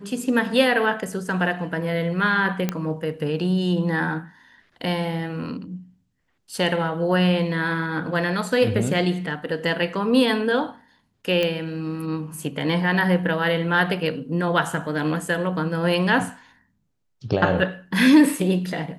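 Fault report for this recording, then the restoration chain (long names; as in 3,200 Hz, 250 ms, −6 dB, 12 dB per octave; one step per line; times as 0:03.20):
0:02.69: click −9 dBFS
0:11.43: click −11 dBFS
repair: click removal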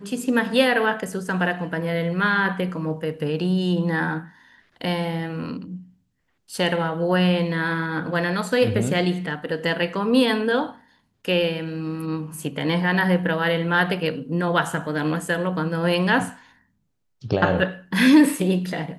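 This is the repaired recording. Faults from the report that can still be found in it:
none of them is left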